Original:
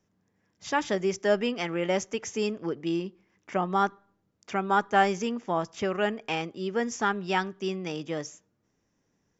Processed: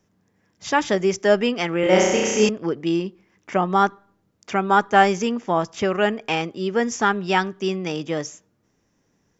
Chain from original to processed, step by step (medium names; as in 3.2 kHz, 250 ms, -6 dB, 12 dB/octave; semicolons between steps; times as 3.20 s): 1.80–2.49 s: flutter echo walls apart 5.6 m, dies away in 1.3 s; trim +7 dB